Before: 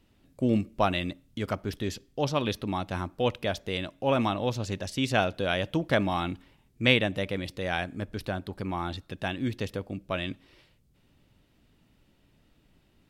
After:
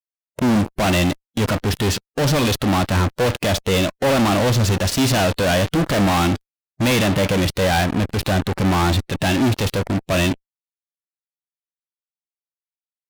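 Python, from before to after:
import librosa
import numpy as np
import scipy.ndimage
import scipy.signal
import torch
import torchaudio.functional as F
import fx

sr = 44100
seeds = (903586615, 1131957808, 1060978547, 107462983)

y = fx.fuzz(x, sr, gain_db=44.0, gate_db=-45.0)
y = fx.hpss(y, sr, part='harmonic', gain_db=5)
y = y * 10.0 ** (-5.5 / 20.0)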